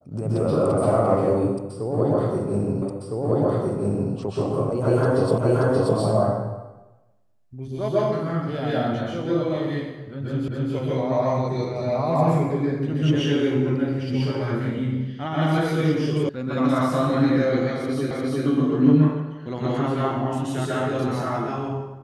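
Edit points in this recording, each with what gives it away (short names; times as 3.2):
2.82 repeat of the last 1.31 s
5.38 repeat of the last 0.58 s
10.48 repeat of the last 0.26 s
16.29 sound cut off
18.11 repeat of the last 0.35 s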